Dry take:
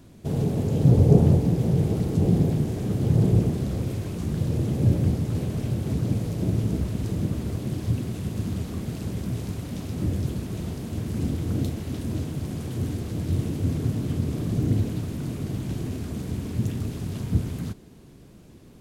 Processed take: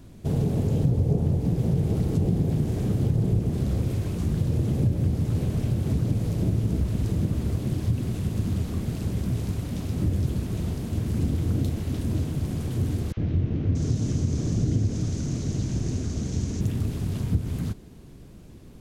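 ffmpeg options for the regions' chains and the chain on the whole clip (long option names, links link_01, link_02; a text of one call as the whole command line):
ffmpeg -i in.wav -filter_complex "[0:a]asettb=1/sr,asplit=3[link_01][link_02][link_03];[link_01]atrim=end=13.124[link_04];[link_02]atrim=start=13.12:end=16.61,asetpts=PTS-STARTPTS,afade=type=in:duration=0.004:curve=qsin,afade=type=out:start_time=3.486:duration=0.004:curve=qsin,lowpass=frequency=6300:width_type=q:width=4.2,acrossover=split=1000|3000[link_05][link_06][link_07];[link_05]adelay=50[link_08];[link_07]adelay=630[link_09];[link_08][link_06][link_09]amix=inputs=3:normalize=0,atrim=end_sample=153909[link_10];[link_03]atrim=start=16.606[link_11];[link_04][link_10]acrossfade=duration=0.004:curve1=hsin:curve2=qsin[link_12];[link_12][link_11]acrossfade=duration=0.004:curve1=qsin:curve2=hsin,lowshelf=frequency=77:gain=10,acompressor=threshold=-19dB:ratio=6" out.wav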